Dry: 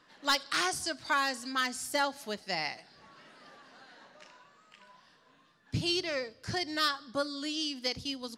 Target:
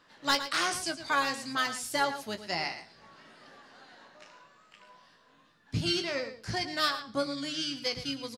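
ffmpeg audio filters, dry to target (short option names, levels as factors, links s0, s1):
-filter_complex "[0:a]asplit=2[s0][s1];[s1]adelay=18,volume=0.398[s2];[s0][s2]amix=inputs=2:normalize=0,asplit=2[s3][s4];[s4]asetrate=22050,aresample=44100,atempo=2,volume=0.178[s5];[s3][s5]amix=inputs=2:normalize=0,asplit=2[s6][s7];[s7]adelay=110.8,volume=0.282,highshelf=f=4000:g=-2.49[s8];[s6][s8]amix=inputs=2:normalize=0"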